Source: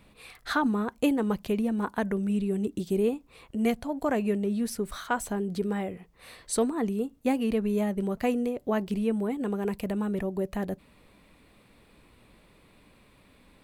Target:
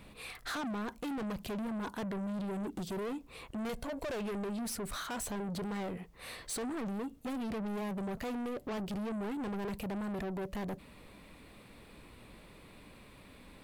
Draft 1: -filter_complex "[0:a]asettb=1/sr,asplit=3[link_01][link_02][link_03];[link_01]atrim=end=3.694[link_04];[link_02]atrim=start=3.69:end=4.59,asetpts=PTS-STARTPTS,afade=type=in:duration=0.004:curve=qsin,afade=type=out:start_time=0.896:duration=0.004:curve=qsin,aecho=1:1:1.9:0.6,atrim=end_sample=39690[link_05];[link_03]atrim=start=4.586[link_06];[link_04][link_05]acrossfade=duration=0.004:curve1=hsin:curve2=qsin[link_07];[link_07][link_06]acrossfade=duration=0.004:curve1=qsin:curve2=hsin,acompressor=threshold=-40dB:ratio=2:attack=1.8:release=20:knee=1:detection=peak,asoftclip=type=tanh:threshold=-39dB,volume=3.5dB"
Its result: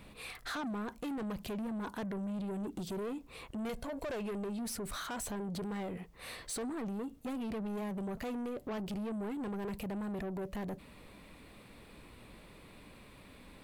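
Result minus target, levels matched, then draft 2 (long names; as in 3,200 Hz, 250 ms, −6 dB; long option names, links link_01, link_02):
downward compressor: peak gain reduction +5 dB
-filter_complex "[0:a]asettb=1/sr,asplit=3[link_01][link_02][link_03];[link_01]atrim=end=3.694[link_04];[link_02]atrim=start=3.69:end=4.59,asetpts=PTS-STARTPTS,afade=type=in:duration=0.004:curve=qsin,afade=type=out:start_time=0.896:duration=0.004:curve=qsin,aecho=1:1:1.9:0.6,atrim=end_sample=39690[link_05];[link_03]atrim=start=4.586[link_06];[link_04][link_05]acrossfade=duration=0.004:curve1=hsin:curve2=qsin[link_07];[link_07][link_06]acrossfade=duration=0.004:curve1=qsin:curve2=hsin,acompressor=threshold=-30.5dB:ratio=2:attack=1.8:release=20:knee=1:detection=peak,asoftclip=type=tanh:threshold=-39dB,volume=3.5dB"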